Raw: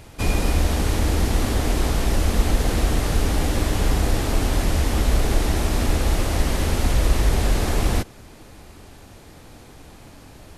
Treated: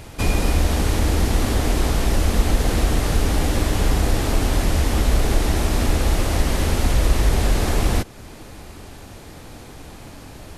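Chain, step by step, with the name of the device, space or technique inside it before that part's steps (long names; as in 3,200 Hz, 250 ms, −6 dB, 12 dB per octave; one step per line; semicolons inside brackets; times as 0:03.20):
parallel compression (in parallel at −2 dB: downward compressor, threshold −30 dBFS, peak gain reduction 17.5 dB)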